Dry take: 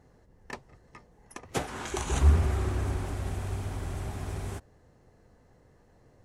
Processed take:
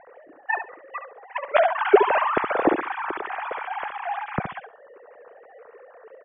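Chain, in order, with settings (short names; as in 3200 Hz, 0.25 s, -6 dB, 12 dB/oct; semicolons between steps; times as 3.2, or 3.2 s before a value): sine-wave speech; LPF 2200 Hz 12 dB/oct; on a send: feedback echo 69 ms, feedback 17%, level -8.5 dB; on the sum: gain +5 dB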